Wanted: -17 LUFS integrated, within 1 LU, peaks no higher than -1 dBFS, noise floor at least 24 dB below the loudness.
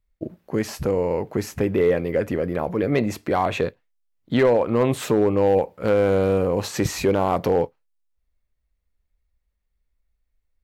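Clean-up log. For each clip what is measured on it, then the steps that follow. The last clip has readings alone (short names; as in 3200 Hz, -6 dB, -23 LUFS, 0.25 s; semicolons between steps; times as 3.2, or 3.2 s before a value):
clipped 0.4%; flat tops at -11.0 dBFS; loudness -22.0 LUFS; peak -11.0 dBFS; loudness target -17.0 LUFS
-> clip repair -11 dBFS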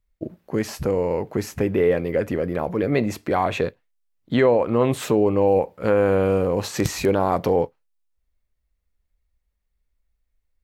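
clipped 0.0%; loudness -22.0 LUFS; peak -2.0 dBFS; loudness target -17.0 LUFS
-> gain +5 dB; limiter -1 dBFS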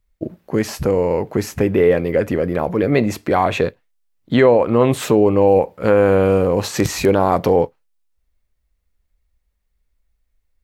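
loudness -17.0 LUFS; peak -1.0 dBFS; noise floor -69 dBFS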